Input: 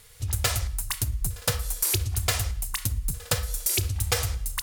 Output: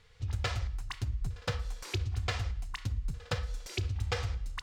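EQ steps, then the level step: air absorption 170 m; notch 630 Hz, Q 12; -5.0 dB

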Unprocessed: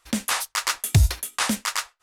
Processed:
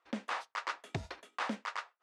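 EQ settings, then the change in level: HPF 330 Hz 12 dB/oct; LPF 1100 Hz 6 dB/oct; air absorption 95 m; -5.0 dB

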